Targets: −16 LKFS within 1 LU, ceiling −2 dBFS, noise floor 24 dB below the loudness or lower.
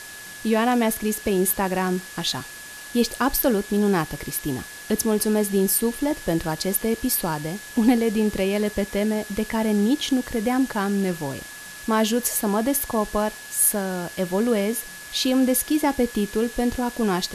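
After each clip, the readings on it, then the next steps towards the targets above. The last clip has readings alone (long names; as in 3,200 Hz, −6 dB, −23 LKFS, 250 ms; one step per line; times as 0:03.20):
interfering tone 1,700 Hz; level of the tone −40 dBFS; background noise floor −39 dBFS; target noise floor −47 dBFS; integrated loudness −23.0 LKFS; sample peak −6.0 dBFS; target loudness −16.0 LKFS
→ notch filter 1,700 Hz, Q 30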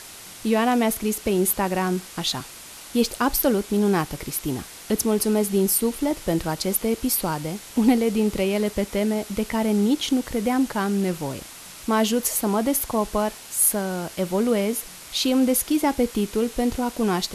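interfering tone none found; background noise floor −42 dBFS; target noise floor −47 dBFS
→ broadband denoise 6 dB, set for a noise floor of −42 dBFS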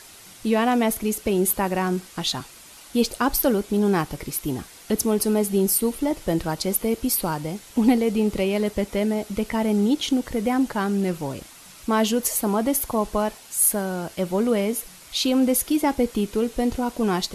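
background noise floor −46 dBFS; target noise floor −47 dBFS
→ broadband denoise 6 dB, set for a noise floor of −46 dBFS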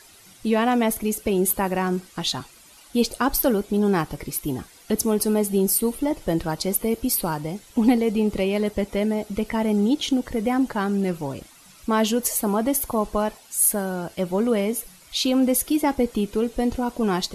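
background noise floor −50 dBFS; integrated loudness −23.0 LKFS; sample peak −6.5 dBFS; target loudness −16.0 LKFS
→ level +7 dB
brickwall limiter −2 dBFS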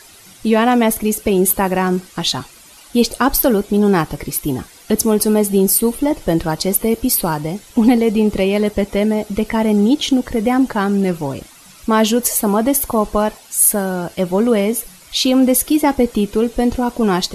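integrated loudness −16.0 LKFS; sample peak −2.0 dBFS; background noise floor −43 dBFS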